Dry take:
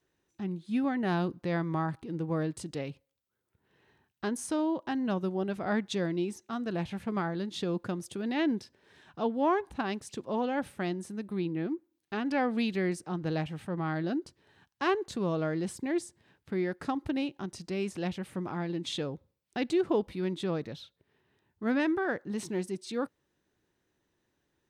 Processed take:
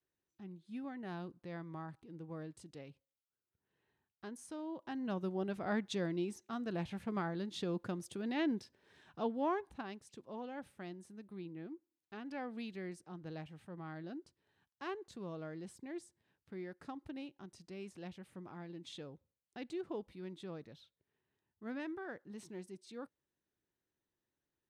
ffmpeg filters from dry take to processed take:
-af "volume=0.501,afade=t=in:st=4.62:d=0.72:silence=0.354813,afade=t=out:st=9.21:d=0.77:silence=0.375837"

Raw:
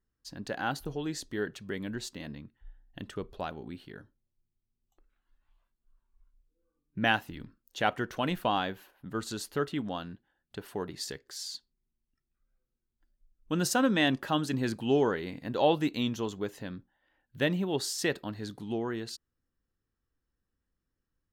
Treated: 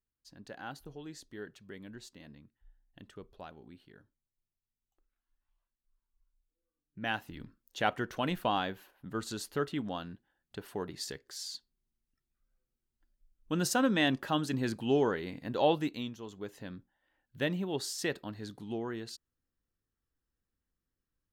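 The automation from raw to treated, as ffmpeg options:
-af "volume=2.24,afade=t=in:st=7:d=0.43:silence=0.354813,afade=t=out:st=15.7:d=0.48:silence=0.281838,afade=t=in:st=16.18:d=0.5:silence=0.354813"

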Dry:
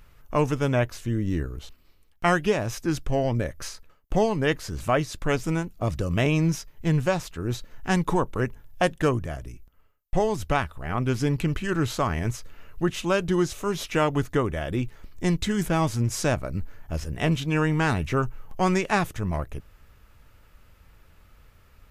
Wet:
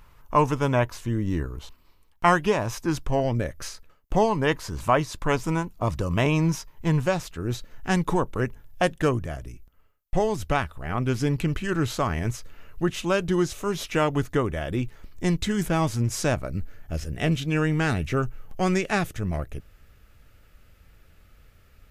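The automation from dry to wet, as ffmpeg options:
-af "asetnsamples=n=441:p=0,asendcmd='3.2 equalizer g -0.5;4.13 equalizer g 10;7.06 equalizer g -1;16.47 equalizer g -9',equalizer=f=980:t=o:w=0.4:g=10"

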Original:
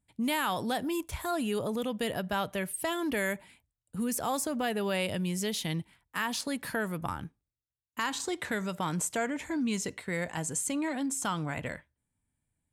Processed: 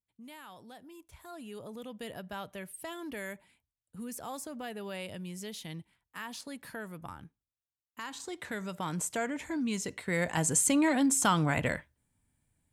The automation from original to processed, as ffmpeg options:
-af "volume=2,afade=t=in:st=0.96:d=1.16:silence=0.316228,afade=t=in:st=8.06:d=1.07:silence=0.421697,afade=t=in:st=9.87:d=0.66:silence=0.398107"

